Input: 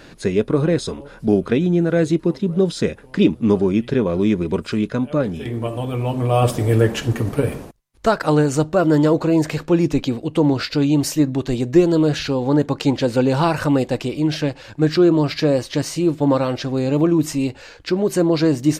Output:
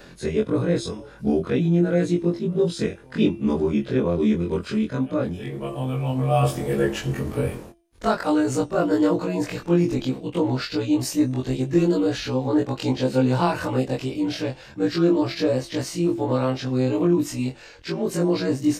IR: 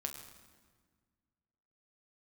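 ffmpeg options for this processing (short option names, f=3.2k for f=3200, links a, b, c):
-af "afftfilt=real='re':imag='-im':win_size=2048:overlap=0.75,acompressor=mode=upward:threshold=-41dB:ratio=2.5,bandreject=f=339.5:t=h:w=4,bandreject=f=679:t=h:w=4,bandreject=f=1.0185k:t=h:w=4,bandreject=f=1.358k:t=h:w=4,bandreject=f=1.6975k:t=h:w=4,bandreject=f=2.037k:t=h:w=4,bandreject=f=2.3765k:t=h:w=4,bandreject=f=2.716k:t=h:w=4,bandreject=f=3.0555k:t=h:w=4,bandreject=f=3.395k:t=h:w=4,bandreject=f=3.7345k:t=h:w=4,bandreject=f=4.074k:t=h:w=4,bandreject=f=4.4135k:t=h:w=4,bandreject=f=4.753k:t=h:w=4,bandreject=f=5.0925k:t=h:w=4,bandreject=f=5.432k:t=h:w=4,bandreject=f=5.7715k:t=h:w=4,bandreject=f=6.111k:t=h:w=4,bandreject=f=6.4505k:t=h:w=4,bandreject=f=6.79k:t=h:w=4,bandreject=f=7.1295k:t=h:w=4,bandreject=f=7.469k:t=h:w=4,bandreject=f=7.8085k:t=h:w=4,bandreject=f=8.148k:t=h:w=4,bandreject=f=8.4875k:t=h:w=4,bandreject=f=8.827k:t=h:w=4,bandreject=f=9.1665k:t=h:w=4,bandreject=f=9.506k:t=h:w=4,bandreject=f=9.8455k:t=h:w=4"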